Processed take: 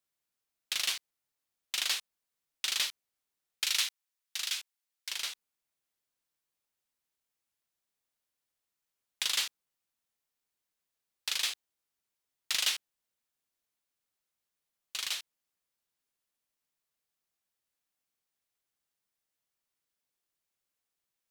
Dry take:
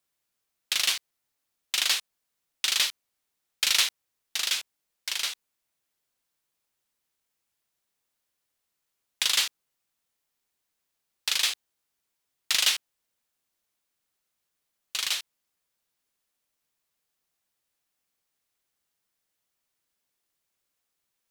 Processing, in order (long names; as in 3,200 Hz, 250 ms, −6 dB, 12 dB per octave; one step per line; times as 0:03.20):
0:03.64–0:05.11: high-pass filter 1,200 Hz 6 dB per octave
level −6.5 dB